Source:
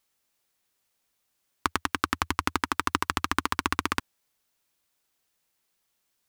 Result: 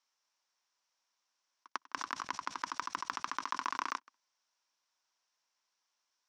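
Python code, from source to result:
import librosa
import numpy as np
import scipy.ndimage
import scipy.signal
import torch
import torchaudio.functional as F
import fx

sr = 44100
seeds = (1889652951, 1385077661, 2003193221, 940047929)

y = fx.tracing_dist(x, sr, depth_ms=0.13)
y = fx.auto_swell(y, sr, attack_ms=104.0)
y = fx.level_steps(y, sr, step_db=11)
y = fx.cabinet(y, sr, low_hz=280.0, low_slope=24, high_hz=6600.0, hz=(300.0, 430.0, 1000.0, 1500.0, 5600.0), db=(-6, -9, 9, 3, 10))
y = y + 10.0 ** (-23.0 / 20.0) * np.pad(y, (int(160 * sr / 1000.0), 0))[:len(y)]
y = fx.sustainer(y, sr, db_per_s=47.0, at=(1.87, 3.98))
y = y * librosa.db_to_amplitude(-5.5)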